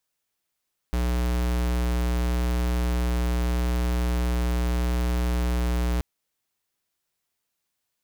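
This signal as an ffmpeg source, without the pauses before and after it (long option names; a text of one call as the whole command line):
ffmpeg -f lavfi -i "aevalsrc='0.0631*(2*lt(mod(60.4*t,1),0.5)-1)':duration=5.08:sample_rate=44100" out.wav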